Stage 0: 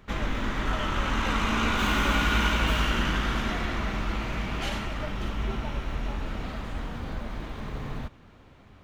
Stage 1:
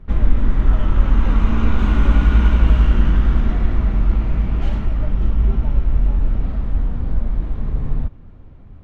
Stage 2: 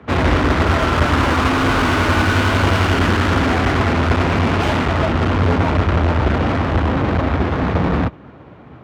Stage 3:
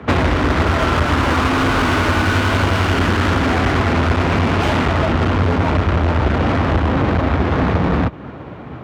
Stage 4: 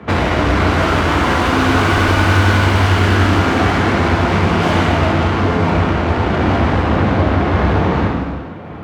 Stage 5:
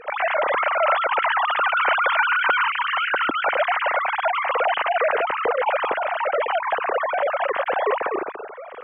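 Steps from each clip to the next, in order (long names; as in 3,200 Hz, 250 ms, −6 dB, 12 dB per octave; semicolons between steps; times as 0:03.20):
spectral tilt −4 dB per octave; level −2 dB
mid-hump overdrive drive 47 dB, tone 2,100 Hz, clips at −1 dBFS; frequency shifter +39 Hz; expander for the loud parts 2.5 to 1, over −18 dBFS; level −5 dB
downward compressor 10 to 1, threshold −20 dBFS, peak gain reduction 11 dB; level +8 dB
reverb whose tail is shaped and stops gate 480 ms falling, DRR −3 dB; level −2.5 dB
three sine waves on the formant tracks; level −8 dB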